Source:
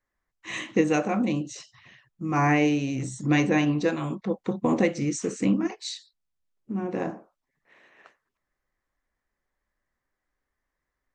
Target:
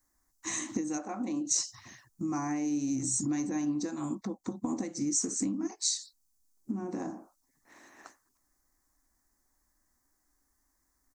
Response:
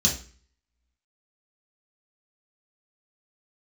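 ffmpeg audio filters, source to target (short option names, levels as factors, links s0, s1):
-filter_complex "[0:a]asplit=3[s0][s1][s2];[s0]afade=t=out:st=0.97:d=0.02[s3];[s1]bass=f=250:g=-14,treble=f=4000:g=-10,afade=t=in:st=0.97:d=0.02,afade=t=out:st=1.5:d=0.02[s4];[s2]afade=t=in:st=1.5:d=0.02[s5];[s3][s4][s5]amix=inputs=3:normalize=0,acompressor=threshold=0.0141:ratio=8,firequalizer=gain_entry='entry(100,0);entry(150,-7);entry(280,6);entry(460,-10);entry(790,0);entry(2900,-13);entry(4400,3);entry(6200,12)':delay=0.05:min_phase=1,volume=1.88"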